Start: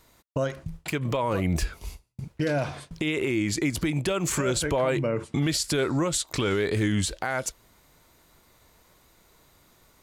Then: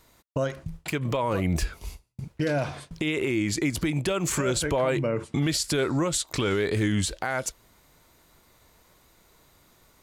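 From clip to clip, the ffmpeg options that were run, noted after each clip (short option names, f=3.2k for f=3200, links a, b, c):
-af anull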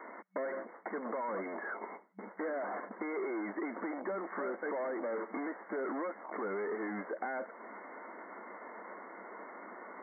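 -filter_complex "[0:a]asplit=2[a][b];[b]highpass=f=720:p=1,volume=31dB,asoftclip=type=tanh:threshold=-16.5dB[c];[a][c]amix=inputs=2:normalize=0,lowpass=f=1.2k:p=1,volume=-6dB,acrossover=split=450|1400[d][e][f];[d]acompressor=threshold=-39dB:ratio=4[g];[e]acompressor=threshold=-35dB:ratio=4[h];[f]acompressor=threshold=-44dB:ratio=4[i];[g][h][i]amix=inputs=3:normalize=0,afftfilt=real='re*between(b*sr/4096,190,2200)':imag='im*between(b*sr/4096,190,2200)':win_size=4096:overlap=0.75,volume=-4dB"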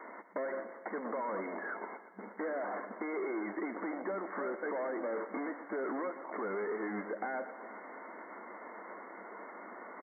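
-af "aecho=1:1:119|238|357|476|595|714:0.224|0.132|0.0779|0.046|0.0271|0.016"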